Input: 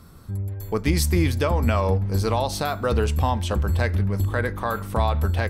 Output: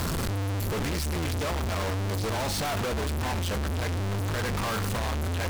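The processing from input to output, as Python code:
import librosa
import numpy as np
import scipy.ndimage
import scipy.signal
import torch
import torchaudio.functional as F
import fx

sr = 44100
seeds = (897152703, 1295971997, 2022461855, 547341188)

y = np.sign(x) * np.sqrt(np.mean(np.square(x)))
y = fx.high_shelf(y, sr, hz=11000.0, db=-6.5)
y = y * librosa.db_to_amplitude(-6.0)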